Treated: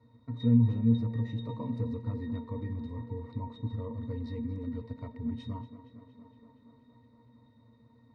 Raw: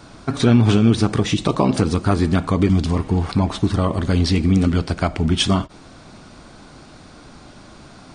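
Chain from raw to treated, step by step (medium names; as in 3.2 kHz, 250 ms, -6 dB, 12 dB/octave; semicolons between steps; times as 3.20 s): pitch-class resonator A#, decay 0.17 s; tape echo 234 ms, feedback 83%, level -14 dB, low-pass 4.7 kHz; trim -7 dB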